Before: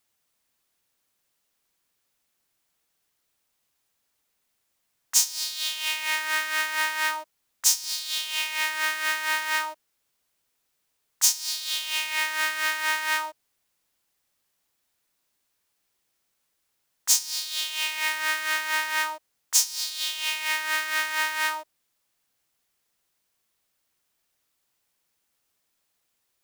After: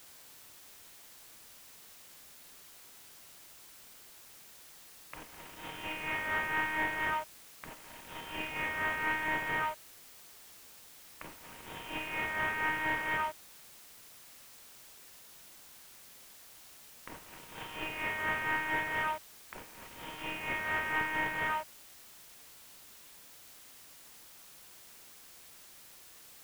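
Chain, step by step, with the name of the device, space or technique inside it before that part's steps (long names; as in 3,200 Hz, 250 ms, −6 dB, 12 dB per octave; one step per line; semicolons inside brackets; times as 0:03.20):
army field radio (band-pass filter 340–3,300 Hz; variable-slope delta modulation 16 kbit/s; white noise bed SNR 15 dB)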